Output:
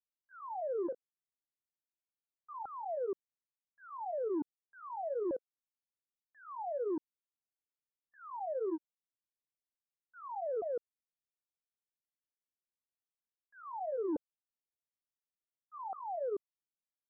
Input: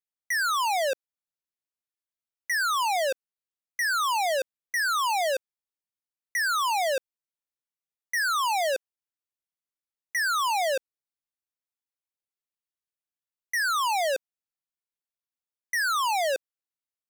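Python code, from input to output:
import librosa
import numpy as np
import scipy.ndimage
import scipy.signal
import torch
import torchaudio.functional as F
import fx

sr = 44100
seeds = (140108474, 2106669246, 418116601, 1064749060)

y = fx.pitch_ramps(x, sr, semitones=-10.0, every_ms=885)
y = scipy.ndimage.gaussian_filter1d(y, 11.0, mode='constant')
y = F.gain(torch.from_numpy(y), -5.5).numpy()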